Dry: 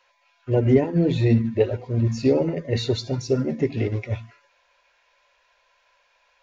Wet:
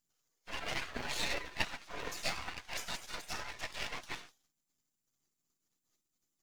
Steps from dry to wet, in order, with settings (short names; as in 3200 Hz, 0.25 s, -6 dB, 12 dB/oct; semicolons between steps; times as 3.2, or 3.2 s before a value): spectral gate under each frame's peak -30 dB weak; half-wave rectifier; gain +10.5 dB